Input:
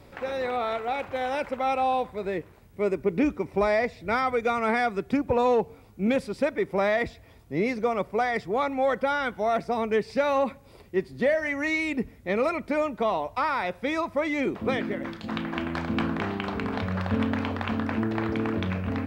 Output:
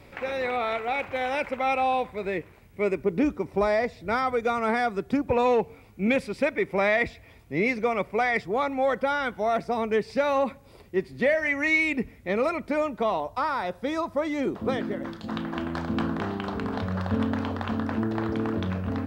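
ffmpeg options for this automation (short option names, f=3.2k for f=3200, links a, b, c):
-af "asetnsamples=n=441:p=0,asendcmd='3.03 equalizer g -3;5.29 equalizer g 7.5;8.42 equalizer g 0;11.04 equalizer g 6;12.28 equalizer g -1;13.2 equalizer g -8.5',equalizer=f=2.3k:t=o:w=0.61:g=7"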